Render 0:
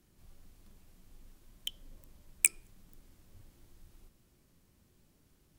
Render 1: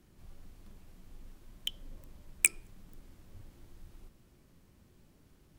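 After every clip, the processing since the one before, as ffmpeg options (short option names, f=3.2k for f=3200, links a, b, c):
-af "highshelf=f=3.8k:g=-7,volume=5.5dB"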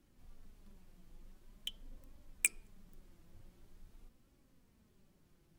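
-af "flanger=delay=3.5:depth=2.5:regen=49:speed=0.46:shape=triangular,volume=-2.5dB"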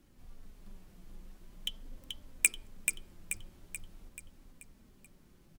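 -af "aecho=1:1:433|866|1299|1732|2165|2598:0.531|0.265|0.133|0.0664|0.0332|0.0166,volume=5.5dB"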